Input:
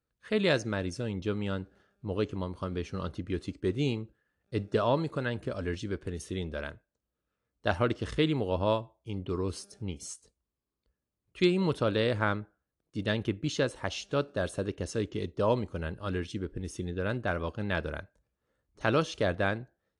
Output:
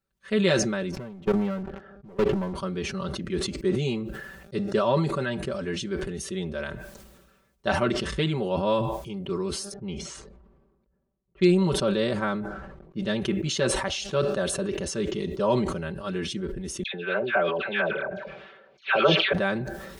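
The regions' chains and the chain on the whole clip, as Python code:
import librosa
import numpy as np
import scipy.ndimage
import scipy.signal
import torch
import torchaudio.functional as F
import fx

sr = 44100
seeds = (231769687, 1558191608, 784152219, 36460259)

y = fx.chain(x, sr, fx.lowpass(hz=1600.0, slope=12),
    fx.leveller(passes=3),
    fx.level_steps(step_db=23), at=(0.91, 2.55))
y = fx.chain(y, sr, fx.env_lowpass(base_hz=920.0, full_db=-28.0),
    fx.dynamic_eq(hz=2100.0, q=0.8, threshold_db=-44.0, ratio=4.0, max_db=-4),
    fx.sustainer(db_per_s=130.0), at=(9.73, 13.16))
y = fx.chain(y, sr, fx.cabinet(low_hz=250.0, low_slope=12, high_hz=3900.0, hz=(280.0, 420.0, 680.0, 1500.0, 2400.0, 3300.0), db=(-10, 5, 8, 6, 8, 4)),
    fx.dispersion(late='lows', ms=110.0, hz=1400.0), at=(16.83, 19.33))
y = y + 0.91 * np.pad(y, (int(5.2 * sr / 1000.0), 0))[:len(y)]
y = fx.sustainer(y, sr, db_per_s=42.0)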